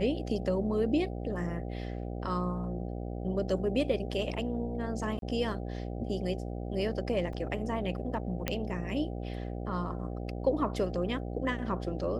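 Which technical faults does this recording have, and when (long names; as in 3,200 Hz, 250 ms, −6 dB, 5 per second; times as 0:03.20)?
mains buzz 60 Hz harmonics 13 −37 dBFS
0:05.19–0:05.22: drop-out 32 ms
0:07.33: drop-out 3.2 ms
0:08.48: click −14 dBFS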